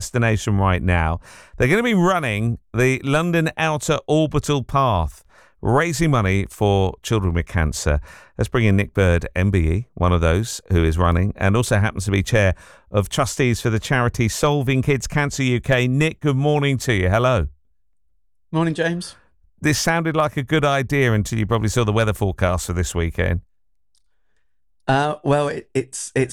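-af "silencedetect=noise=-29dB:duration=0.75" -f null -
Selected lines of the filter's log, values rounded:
silence_start: 17.48
silence_end: 18.53 | silence_duration: 1.05
silence_start: 23.39
silence_end: 24.88 | silence_duration: 1.49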